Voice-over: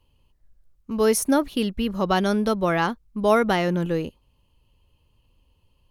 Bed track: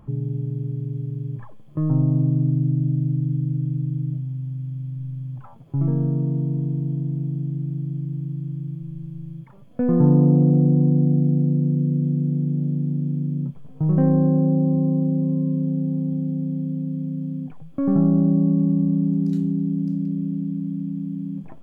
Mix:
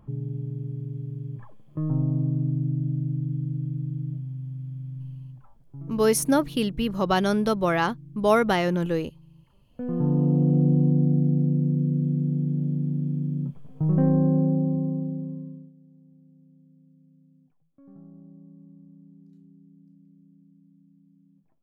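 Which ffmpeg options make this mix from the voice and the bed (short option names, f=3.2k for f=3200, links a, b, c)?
-filter_complex "[0:a]adelay=5000,volume=-1dB[a];[1:a]volume=9dB,afade=t=out:st=5.01:d=0.52:silence=0.251189,afade=t=in:st=9.55:d=1.13:silence=0.188365,afade=t=out:st=14.39:d=1.33:silence=0.0421697[b];[a][b]amix=inputs=2:normalize=0"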